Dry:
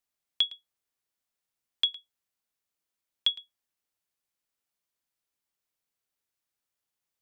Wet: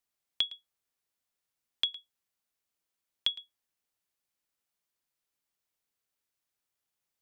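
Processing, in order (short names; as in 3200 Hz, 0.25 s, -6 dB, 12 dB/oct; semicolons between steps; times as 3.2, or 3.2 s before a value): compressor, threshold -25 dBFS, peak gain reduction 5.5 dB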